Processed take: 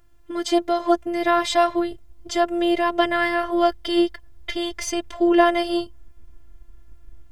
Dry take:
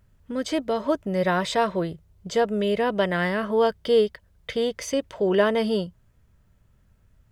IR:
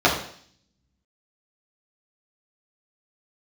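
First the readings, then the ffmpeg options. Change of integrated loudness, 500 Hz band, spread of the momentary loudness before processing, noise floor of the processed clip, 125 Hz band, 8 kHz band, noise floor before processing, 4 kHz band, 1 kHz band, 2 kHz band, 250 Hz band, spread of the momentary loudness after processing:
+2.5 dB, 0.0 dB, 10 LU, -47 dBFS, under -10 dB, +5.0 dB, -61 dBFS, +4.5 dB, +6.0 dB, +3.5 dB, +5.0 dB, 10 LU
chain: -af "asubboost=boost=7.5:cutoff=60,afftfilt=real='hypot(re,im)*cos(PI*b)':imag='0':win_size=512:overlap=0.75,volume=2.51"

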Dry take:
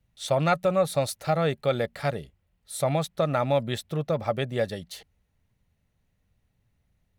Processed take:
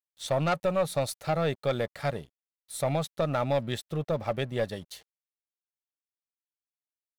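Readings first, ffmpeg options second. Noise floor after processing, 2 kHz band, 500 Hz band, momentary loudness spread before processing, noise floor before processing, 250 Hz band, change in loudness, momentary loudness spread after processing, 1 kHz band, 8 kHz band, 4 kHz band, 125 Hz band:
under -85 dBFS, -3.0 dB, -3.0 dB, 10 LU, -74 dBFS, -3.0 dB, -3.0 dB, 9 LU, -3.5 dB, -3.0 dB, -2.5 dB, -3.0 dB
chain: -af "aeval=exprs='sgn(val(0))*max(abs(val(0))-0.00266,0)':c=same,aeval=exprs='0.335*(cos(1*acos(clip(val(0)/0.335,-1,1)))-cos(1*PI/2))+0.0376*(cos(5*acos(clip(val(0)/0.335,-1,1)))-cos(5*PI/2))+0.0188*(cos(6*acos(clip(val(0)/0.335,-1,1)))-cos(6*PI/2))':c=same,volume=0.531"

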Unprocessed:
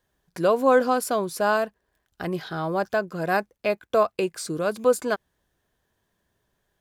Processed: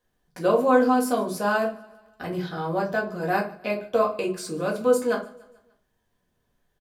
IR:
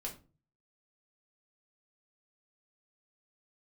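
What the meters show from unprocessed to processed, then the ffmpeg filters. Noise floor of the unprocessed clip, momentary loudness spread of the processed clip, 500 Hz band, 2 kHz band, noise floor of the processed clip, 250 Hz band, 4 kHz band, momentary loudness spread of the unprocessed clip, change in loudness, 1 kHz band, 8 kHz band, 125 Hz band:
-77 dBFS, 12 LU, -0.5 dB, -0.5 dB, -74 dBFS, +3.0 dB, -2.0 dB, 11 LU, 0.0 dB, 0.0 dB, -2.5 dB, +0.5 dB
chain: -filter_complex "[0:a]aecho=1:1:146|292|438|584:0.0794|0.0405|0.0207|0.0105[s0];[1:a]atrim=start_sample=2205[s1];[s0][s1]afir=irnorm=-1:irlink=0"

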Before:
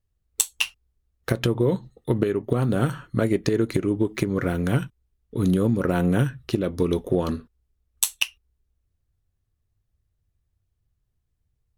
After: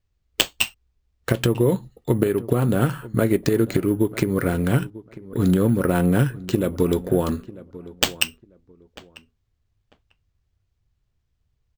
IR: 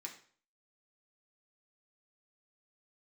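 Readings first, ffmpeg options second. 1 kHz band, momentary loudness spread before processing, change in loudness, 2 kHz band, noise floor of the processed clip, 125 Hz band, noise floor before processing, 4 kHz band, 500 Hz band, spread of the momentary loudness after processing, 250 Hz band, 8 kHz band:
+3.0 dB, 7 LU, +2.5 dB, +3.0 dB, -73 dBFS, +2.5 dB, -75 dBFS, +5.0 dB, +2.5 dB, 12 LU, +2.5 dB, -2.5 dB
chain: -filter_complex "[0:a]acrusher=samples=4:mix=1:aa=0.000001,asplit=2[s0][s1];[s1]adelay=945,lowpass=f=1800:p=1,volume=0.126,asplit=2[s2][s3];[s3]adelay=945,lowpass=f=1800:p=1,volume=0.21[s4];[s2][s4]amix=inputs=2:normalize=0[s5];[s0][s5]amix=inputs=2:normalize=0,volume=1.33"

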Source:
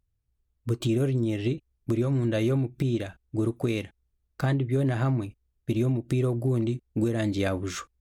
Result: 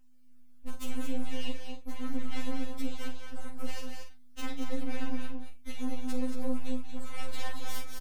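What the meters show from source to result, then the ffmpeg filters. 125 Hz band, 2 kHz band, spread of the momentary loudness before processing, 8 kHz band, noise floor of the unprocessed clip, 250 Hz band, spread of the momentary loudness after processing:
-20.0 dB, -6.5 dB, 8 LU, no reading, -76 dBFS, -9.5 dB, 11 LU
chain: -filter_complex "[0:a]equalizer=f=230:w=0.67:g=-14.5,acompressor=threshold=0.00355:ratio=5,aeval=exprs='abs(val(0))':c=same,aeval=exprs='val(0)+0.000112*(sin(2*PI*50*n/s)+sin(2*PI*2*50*n/s)/2+sin(2*PI*3*50*n/s)/3+sin(2*PI*4*50*n/s)/4+sin(2*PI*5*50*n/s)/5)':c=same,asplit=2[s0][s1];[s1]adelay=44,volume=0.398[s2];[s0][s2]amix=inputs=2:normalize=0,aecho=1:1:192.4|227.4:0.282|0.501,afftfilt=real='re*3.46*eq(mod(b,12),0)':imag='im*3.46*eq(mod(b,12),0)':win_size=2048:overlap=0.75,volume=4.73"

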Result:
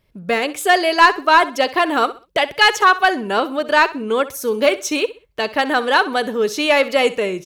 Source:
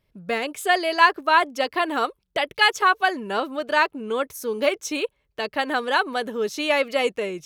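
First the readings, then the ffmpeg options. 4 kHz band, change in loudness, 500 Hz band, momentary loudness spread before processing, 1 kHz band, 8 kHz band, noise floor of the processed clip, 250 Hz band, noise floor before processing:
+6.0 dB, +6.0 dB, +6.5 dB, 9 LU, +6.0 dB, +7.0 dB, -55 dBFS, +7.0 dB, -72 dBFS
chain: -af "acontrast=76,aecho=1:1:64|128|192:0.15|0.0449|0.0135"

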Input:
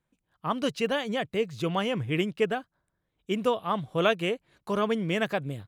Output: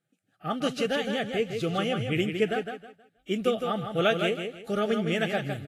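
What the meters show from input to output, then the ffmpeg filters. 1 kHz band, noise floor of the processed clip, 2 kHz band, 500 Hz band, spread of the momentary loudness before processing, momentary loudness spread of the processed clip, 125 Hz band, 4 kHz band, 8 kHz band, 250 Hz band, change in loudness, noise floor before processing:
-1.5 dB, -74 dBFS, +1.0 dB, +0.5 dB, 7 LU, 8 LU, +0.5 dB, +1.5 dB, +2.0 dB, +1.0 dB, +0.5 dB, -81 dBFS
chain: -af "asuperstop=centerf=1000:order=12:qfactor=3.6,aecho=1:1:159|318|477|636:0.473|0.132|0.0371|0.0104" -ar 44100 -c:a libvorbis -b:a 32k

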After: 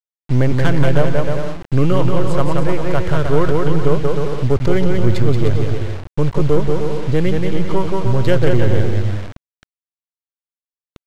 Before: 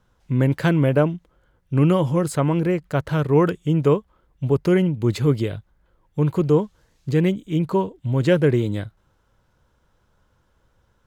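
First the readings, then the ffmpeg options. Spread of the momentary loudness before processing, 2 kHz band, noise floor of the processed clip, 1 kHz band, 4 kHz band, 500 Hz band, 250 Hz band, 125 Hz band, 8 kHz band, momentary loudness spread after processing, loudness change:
10 LU, +4.5 dB, under -85 dBFS, +4.5 dB, +5.0 dB, +3.5 dB, +1.0 dB, +4.0 dB, no reading, 5 LU, +2.5 dB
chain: -filter_complex "[0:a]aeval=exprs='if(lt(val(0),0),0.447*val(0),val(0))':c=same,lowshelf=f=110:t=q:w=1.5:g=10.5,bandreject=f=2600:w=19,aecho=1:1:180|306|394.2|455.9|499.2:0.631|0.398|0.251|0.158|0.1,adynamicequalizer=threshold=0.0126:dfrequency=300:dqfactor=5.1:tfrequency=300:tqfactor=5.1:attack=5:release=100:ratio=0.375:range=3:mode=cutabove:tftype=bell,asplit=2[s0][s1];[s1]acompressor=threshold=0.0708:ratio=8,volume=0.794[s2];[s0][s2]amix=inputs=2:normalize=0,acrusher=bits=5:mix=0:aa=0.000001,asoftclip=type=tanh:threshold=0.596,adynamicsmooth=sensitivity=5:basefreq=2800,aresample=32000,aresample=44100,volume=1.58"

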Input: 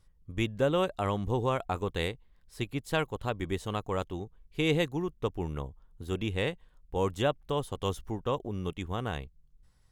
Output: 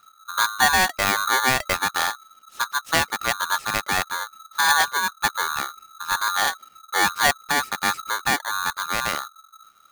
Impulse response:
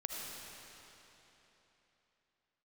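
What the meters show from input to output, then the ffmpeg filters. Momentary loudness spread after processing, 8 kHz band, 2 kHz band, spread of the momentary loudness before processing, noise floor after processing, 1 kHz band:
11 LU, +24.0 dB, +18.5 dB, 12 LU, -55 dBFS, +14.5 dB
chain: -af "highshelf=f=5400:g=-8,aeval=exprs='val(0)*sgn(sin(2*PI*1300*n/s))':c=same,volume=2.66"

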